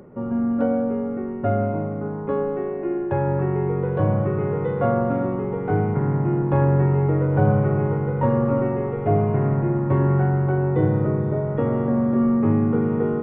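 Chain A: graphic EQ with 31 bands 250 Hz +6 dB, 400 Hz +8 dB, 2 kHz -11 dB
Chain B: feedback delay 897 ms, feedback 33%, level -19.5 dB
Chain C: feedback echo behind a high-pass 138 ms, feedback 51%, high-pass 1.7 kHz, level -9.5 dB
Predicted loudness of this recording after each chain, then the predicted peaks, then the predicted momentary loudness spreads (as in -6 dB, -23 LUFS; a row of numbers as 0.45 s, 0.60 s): -19.0 LUFS, -22.0 LUFS, -21.5 LUFS; -6.0 dBFS, -7.0 dBFS, -7.0 dBFS; 5 LU, 6 LU, 6 LU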